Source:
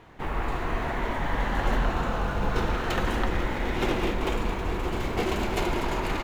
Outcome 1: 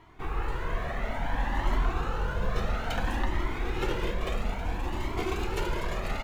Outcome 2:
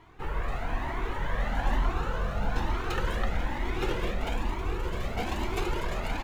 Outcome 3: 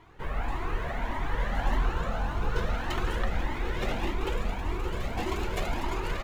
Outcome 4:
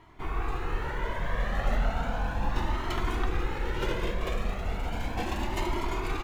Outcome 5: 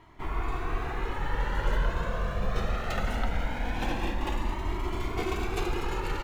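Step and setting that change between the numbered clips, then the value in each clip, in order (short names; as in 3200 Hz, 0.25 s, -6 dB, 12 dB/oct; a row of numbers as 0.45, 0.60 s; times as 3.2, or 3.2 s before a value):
cascading flanger, rate: 0.59, 1.1, 1.7, 0.35, 0.21 Hz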